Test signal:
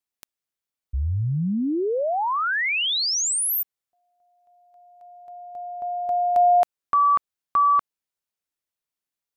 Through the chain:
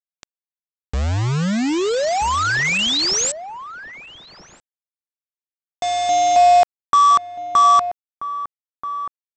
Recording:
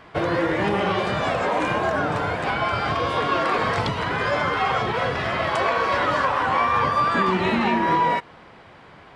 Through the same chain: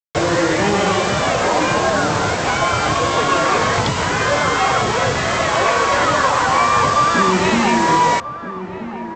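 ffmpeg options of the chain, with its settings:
-filter_complex "[0:a]aresample=16000,acrusher=bits=4:mix=0:aa=0.000001,aresample=44100,asplit=2[s0][s1];[s1]adelay=1283,volume=0.282,highshelf=f=4000:g=-28.9[s2];[s0][s2]amix=inputs=2:normalize=0,volume=1.88"

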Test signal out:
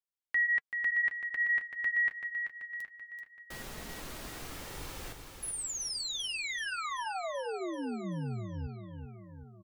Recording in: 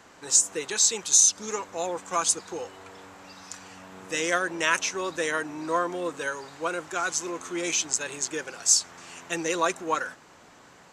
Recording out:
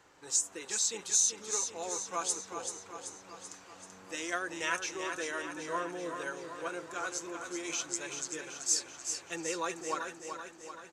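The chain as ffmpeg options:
-af "flanger=delay=2.2:depth=7.1:regen=-52:speed=0.21:shape=sinusoidal,aecho=1:1:384|768|1152|1536|1920|2304|2688:0.447|0.259|0.15|0.0872|0.0505|0.0293|0.017,volume=0.531"

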